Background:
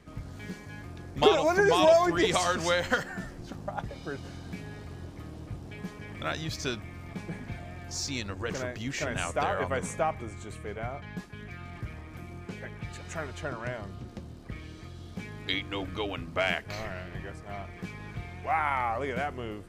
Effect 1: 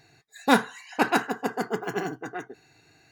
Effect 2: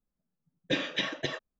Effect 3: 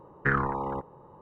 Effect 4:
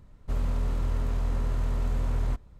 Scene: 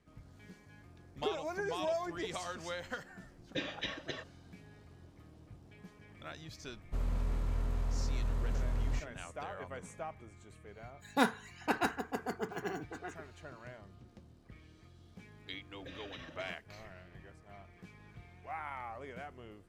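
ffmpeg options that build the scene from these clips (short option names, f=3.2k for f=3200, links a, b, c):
-filter_complex "[2:a]asplit=2[a][b];[0:a]volume=-14.5dB[c];[b]acompressor=threshold=-43dB:ratio=6:attack=3.2:release=140:knee=1:detection=peak[d];[a]atrim=end=1.59,asetpts=PTS-STARTPTS,volume=-8.5dB,afade=t=in:d=0.004:c=hsin,afade=t=out:st=1.586:d=0.004:c=hsin,adelay=2850[e];[4:a]atrim=end=2.59,asetpts=PTS-STARTPTS,volume=-6.5dB,afade=t=in:d=0.004:c=hsin,afade=t=out:st=2.586:d=0.004:c=hsin,adelay=6640[f];[1:a]atrim=end=3.11,asetpts=PTS-STARTPTS,volume=-9.5dB,afade=t=in:d=0.1,afade=t=out:st=3.01:d=0.1,adelay=10690[g];[d]atrim=end=1.59,asetpts=PTS-STARTPTS,volume=-4dB,afade=t=in:d=0.004:c=hsin,afade=t=out:st=1.586:d=0.004:c=hsin,adelay=15160[h];[c][e][f][g][h]amix=inputs=5:normalize=0"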